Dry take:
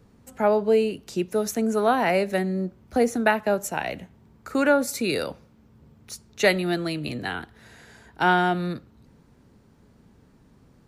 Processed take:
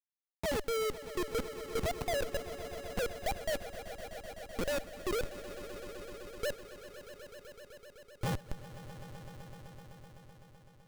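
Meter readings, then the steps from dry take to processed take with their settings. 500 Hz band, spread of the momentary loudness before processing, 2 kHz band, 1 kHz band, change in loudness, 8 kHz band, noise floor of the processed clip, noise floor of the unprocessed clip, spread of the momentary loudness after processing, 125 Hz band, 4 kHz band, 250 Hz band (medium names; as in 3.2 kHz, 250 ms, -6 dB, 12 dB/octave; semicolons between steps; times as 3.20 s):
-13.0 dB, 12 LU, -15.5 dB, -17.0 dB, -14.0 dB, -9.5 dB, -61 dBFS, -57 dBFS, 18 LU, -10.0 dB, -9.5 dB, -18.0 dB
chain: formants replaced by sine waves; Chebyshev band-pass 330–1300 Hz, order 4; Schmitt trigger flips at -21.5 dBFS; echo with a slow build-up 127 ms, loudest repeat 5, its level -16 dB; trim -5.5 dB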